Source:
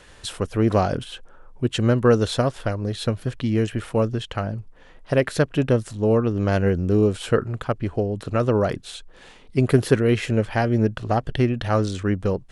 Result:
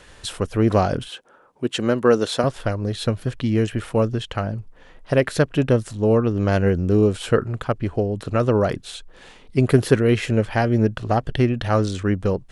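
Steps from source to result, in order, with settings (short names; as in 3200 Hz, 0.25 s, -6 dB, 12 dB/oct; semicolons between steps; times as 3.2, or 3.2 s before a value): 1.08–2.44 HPF 220 Hz 12 dB/oct; gain +1.5 dB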